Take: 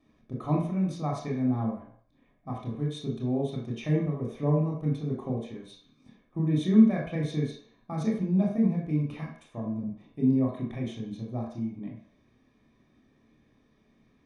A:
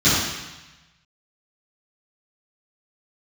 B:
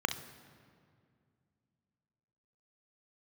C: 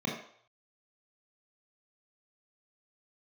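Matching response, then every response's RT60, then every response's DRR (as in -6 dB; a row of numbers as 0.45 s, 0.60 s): C; 1.1 s, 2.2 s, 0.60 s; -15.5 dB, 7.5 dB, -2.0 dB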